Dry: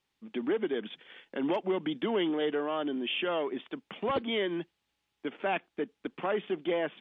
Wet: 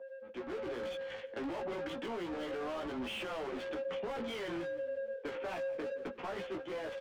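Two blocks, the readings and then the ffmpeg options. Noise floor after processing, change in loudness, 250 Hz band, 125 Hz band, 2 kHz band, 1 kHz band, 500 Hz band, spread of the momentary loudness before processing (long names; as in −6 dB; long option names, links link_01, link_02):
−49 dBFS, −7.0 dB, −9.0 dB, −6.5 dB, −6.0 dB, −7.5 dB, −5.5 dB, 11 LU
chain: -filter_complex "[0:a]aeval=exprs='val(0)+0.0126*sin(2*PI*540*n/s)':channel_layout=same,acrossover=split=160|570[link_01][link_02][link_03];[link_01]aeval=exprs='(mod(126*val(0)+1,2)-1)/126':channel_layout=same[link_04];[link_04][link_02][link_03]amix=inputs=3:normalize=0,agate=range=-33dB:threshold=-28dB:ratio=3:detection=peak,areverse,acompressor=threshold=-44dB:ratio=8,areverse,flanger=delay=4.1:depth=7.1:regen=-31:speed=0.97:shape=sinusoidal,asplit=2[link_05][link_06];[link_06]highpass=frequency=720:poles=1,volume=34dB,asoftclip=type=tanh:threshold=-39dB[link_07];[link_05][link_07]amix=inputs=2:normalize=0,lowpass=frequency=1500:poles=1,volume=-6dB,dynaudnorm=framelen=200:gausssize=13:maxgain=10dB,flanger=delay=15.5:depth=2.5:speed=0.31,asplit=4[link_08][link_09][link_10][link_11];[link_09]adelay=168,afreqshift=-39,volume=-20.5dB[link_12];[link_10]adelay=336,afreqshift=-78,volume=-27.8dB[link_13];[link_11]adelay=504,afreqshift=-117,volume=-35.2dB[link_14];[link_08][link_12][link_13][link_14]amix=inputs=4:normalize=0,alimiter=level_in=17dB:limit=-24dB:level=0:latency=1:release=138,volume=-17dB,volume=8dB"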